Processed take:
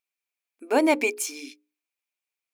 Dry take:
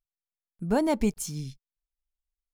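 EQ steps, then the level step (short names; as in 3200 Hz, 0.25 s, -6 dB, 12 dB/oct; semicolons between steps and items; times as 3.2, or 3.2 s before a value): brick-wall FIR high-pass 250 Hz; bell 2400 Hz +14.5 dB 0.31 oct; notches 60/120/180/240/300/360/420/480/540 Hz; +5.0 dB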